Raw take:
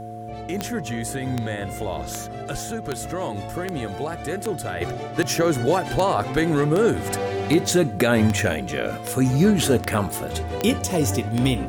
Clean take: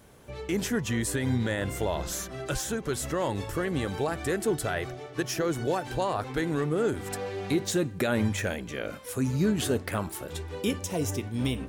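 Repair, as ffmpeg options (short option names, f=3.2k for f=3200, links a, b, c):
-af "adeclick=t=4,bandreject=f=110.4:t=h:w=4,bandreject=f=220.8:t=h:w=4,bandreject=f=331.2:t=h:w=4,bandreject=f=441.6:t=h:w=4,bandreject=f=552:t=h:w=4,bandreject=f=710:w=30,asetnsamples=n=441:p=0,asendcmd='4.81 volume volume -8dB',volume=0dB"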